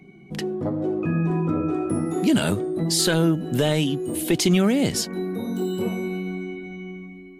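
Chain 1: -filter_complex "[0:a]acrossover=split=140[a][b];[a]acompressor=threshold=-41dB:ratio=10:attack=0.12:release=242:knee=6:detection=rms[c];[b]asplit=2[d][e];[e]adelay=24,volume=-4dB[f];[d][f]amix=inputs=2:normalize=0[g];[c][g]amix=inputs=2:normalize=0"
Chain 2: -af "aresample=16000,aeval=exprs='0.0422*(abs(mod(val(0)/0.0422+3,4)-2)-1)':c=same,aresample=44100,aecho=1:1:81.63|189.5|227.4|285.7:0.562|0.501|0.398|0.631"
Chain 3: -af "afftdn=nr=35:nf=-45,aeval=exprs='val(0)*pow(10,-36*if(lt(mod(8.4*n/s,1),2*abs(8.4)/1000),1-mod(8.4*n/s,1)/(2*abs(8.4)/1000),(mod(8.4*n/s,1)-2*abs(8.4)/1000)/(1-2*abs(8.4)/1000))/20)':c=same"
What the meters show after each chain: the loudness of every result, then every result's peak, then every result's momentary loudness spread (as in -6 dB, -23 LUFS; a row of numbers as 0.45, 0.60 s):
-22.5, -29.0, -32.5 LUFS; -7.5, -18.0, -11.5 dBFS; 14, 2, 13 LU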